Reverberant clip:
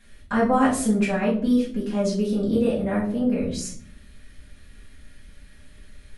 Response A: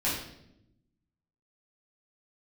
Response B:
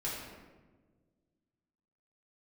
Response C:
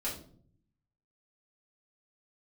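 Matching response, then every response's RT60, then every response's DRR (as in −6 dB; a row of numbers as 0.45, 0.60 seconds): C; 0.80, 1.4, 0.55 seconds; −9.5, −8.0, −8.0 decibels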